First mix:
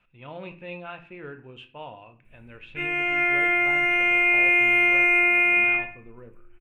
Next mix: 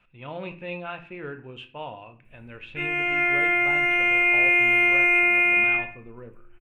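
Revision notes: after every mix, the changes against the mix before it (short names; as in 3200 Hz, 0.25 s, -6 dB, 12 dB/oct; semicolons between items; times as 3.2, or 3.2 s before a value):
speech +3.5 dB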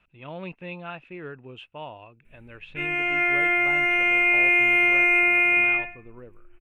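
speech: send off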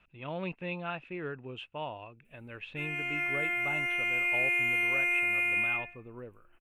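background: add pre-emphasis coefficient 0.8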